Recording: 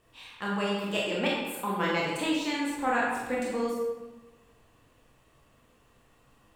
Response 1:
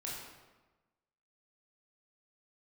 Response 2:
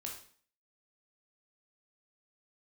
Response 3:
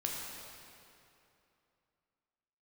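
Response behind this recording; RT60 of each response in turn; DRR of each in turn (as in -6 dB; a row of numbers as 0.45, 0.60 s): 1; 1.2, 0.50, 2.8 s; -5.0, -0.5, -2.0 dB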